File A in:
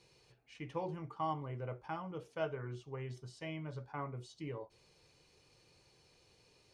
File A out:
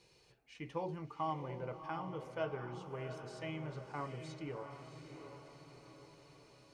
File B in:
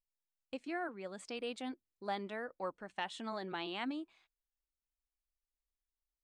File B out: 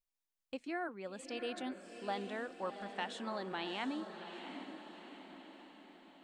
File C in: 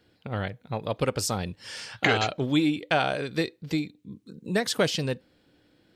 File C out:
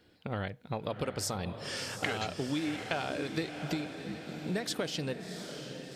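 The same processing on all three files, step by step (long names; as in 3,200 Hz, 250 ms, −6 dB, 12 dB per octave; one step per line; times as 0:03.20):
parametric band 120 Hz −6 dB 0.25 octaves
downward compressor, threshold −31 dBFS
on a send: feedback delay with all-pass diffusion 712 ms, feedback 54%, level −8 dB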